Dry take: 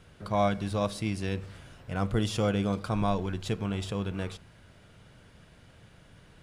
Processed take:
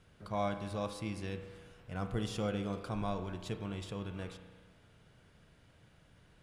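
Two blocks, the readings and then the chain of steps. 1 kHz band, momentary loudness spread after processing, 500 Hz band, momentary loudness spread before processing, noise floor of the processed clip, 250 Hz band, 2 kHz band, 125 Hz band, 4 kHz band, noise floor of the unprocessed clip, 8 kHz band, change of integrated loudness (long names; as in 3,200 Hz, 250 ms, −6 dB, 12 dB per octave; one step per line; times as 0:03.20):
−8.0 dB, 11 LU, −8.0 dB, 10 LU, −64 dBFS, −8.5 dB, −8.0 dB, −9.0 dB, −8.0 dB, −57 dBFS, −8.5 dB, −8.5 dB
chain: spring reverb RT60 1.6 s, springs 33 ms, chirp 70 ms, DRR 8 dB
level −8.5 dB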